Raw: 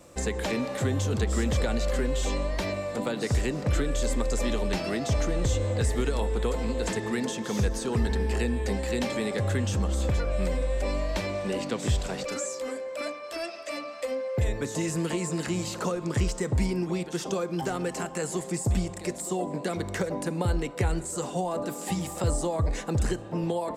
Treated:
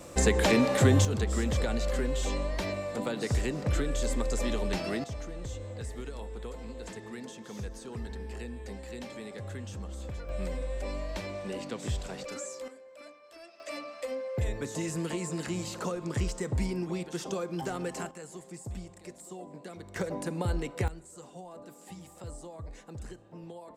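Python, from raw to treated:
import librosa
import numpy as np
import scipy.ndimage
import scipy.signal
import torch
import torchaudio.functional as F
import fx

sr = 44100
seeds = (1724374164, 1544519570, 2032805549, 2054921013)

y = fx.gain(x, sr, db=fx.steps((0.0, 5.5), (1.05, -3.0), (5.04, -13.0), (10.29, -7.0), (12.68, -16.5), (13.6, -4.5), (18.11, -14.0), (19.96, -4.0), (20.88, -16.5)))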